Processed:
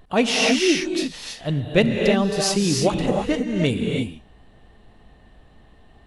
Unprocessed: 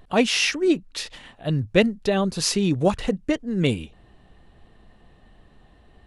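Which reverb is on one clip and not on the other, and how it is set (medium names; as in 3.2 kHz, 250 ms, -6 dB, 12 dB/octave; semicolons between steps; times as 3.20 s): gated-style reverb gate 350 ms rising, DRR 1.5 dB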